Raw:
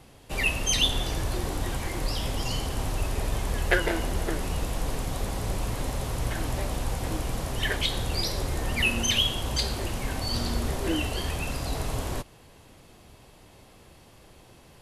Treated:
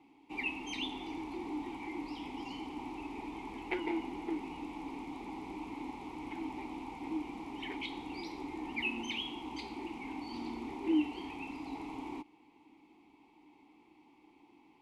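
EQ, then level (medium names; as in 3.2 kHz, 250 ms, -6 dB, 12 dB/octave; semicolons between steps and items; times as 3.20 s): vowel filter u; peaking EQ 110 Hz -10 dB 1.3 oct; +5.0 dB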